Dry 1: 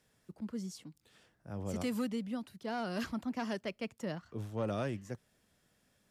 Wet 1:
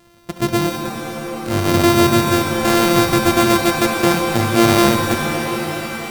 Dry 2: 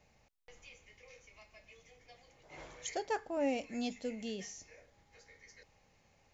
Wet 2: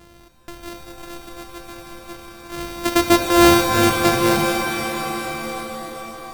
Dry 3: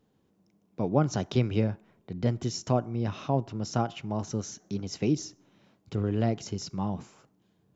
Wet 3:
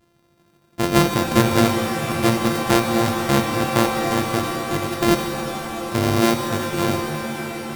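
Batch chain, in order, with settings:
sorted samples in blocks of 128 samples; pitch-shifted reverb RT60 3.9 s, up +7 st, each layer -2 dB, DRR 5.5 dB; peak normalisation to -2 dBFS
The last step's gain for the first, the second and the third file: +21.0 dB, +20.5 dB, +7.5 dB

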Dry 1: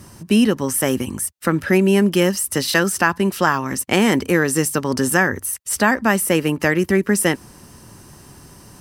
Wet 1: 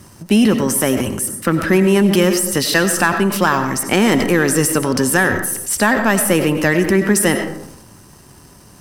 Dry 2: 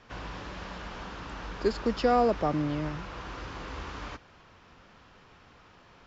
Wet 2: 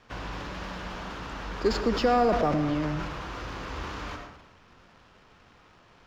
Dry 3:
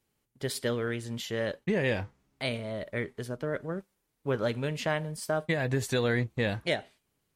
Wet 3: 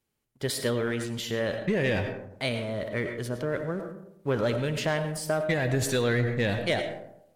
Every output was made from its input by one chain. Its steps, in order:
waveshaping leveller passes 1; algorithmic reverb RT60 0.77 s, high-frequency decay 0.4×, pre-delay 55 ms, DRR 9.5 dB; transient shaper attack +1 dB, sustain +6 dB; trim -1.5 dB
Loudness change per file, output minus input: +3.0 LU, +2.0 LU, +3.0 LU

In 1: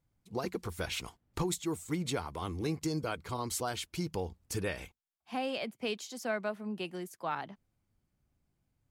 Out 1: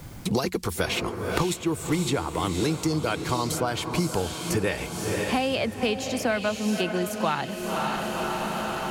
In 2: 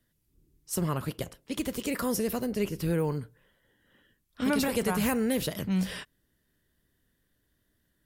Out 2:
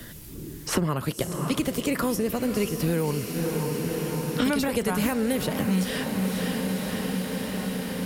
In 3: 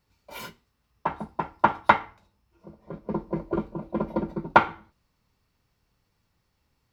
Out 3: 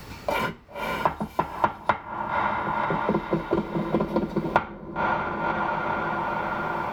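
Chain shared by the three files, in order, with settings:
echo that smears into a reverb 541 ms, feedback 52%, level -10 dB; three bands compressed up and down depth 100%; normalise loudness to -27 LUFS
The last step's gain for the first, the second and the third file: +8.5 dB, +3.0 dB, +3.0 dB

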